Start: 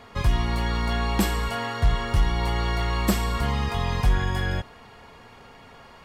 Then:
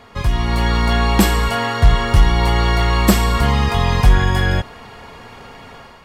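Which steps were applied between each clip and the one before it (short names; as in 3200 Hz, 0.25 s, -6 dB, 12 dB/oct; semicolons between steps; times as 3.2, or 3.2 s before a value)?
AGC gain up to 7 dB; gain +3 dB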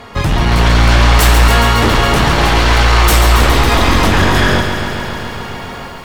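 sine folder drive 14 dB, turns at -1 dBFS; lo-fi delay 0.138 s, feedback 80%, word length 6-bit, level -8 dB; gain -8 dB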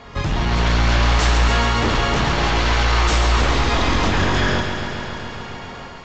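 reverse echo 0.108 s -19.5 dB; gain -7.5 dB; Vorbis 64 kbps 16000 Hz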